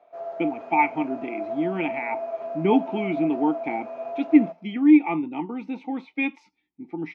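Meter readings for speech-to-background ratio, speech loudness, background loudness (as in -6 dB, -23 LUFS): 9.0 dB, -24.5 LUFS, -33.5 LUFS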